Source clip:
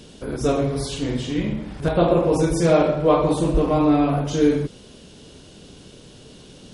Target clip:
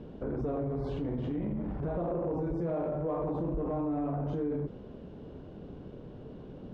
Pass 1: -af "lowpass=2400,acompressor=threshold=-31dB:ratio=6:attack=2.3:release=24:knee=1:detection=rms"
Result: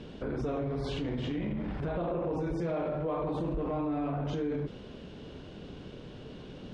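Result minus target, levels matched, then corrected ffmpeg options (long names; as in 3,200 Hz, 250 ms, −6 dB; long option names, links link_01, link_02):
2,000 Hz band +8.5 dB
-af "lowpass=970,acompressor=threshold=-31dB:ratio=6:attack=2.3:release=24:knee=1:detection=rms"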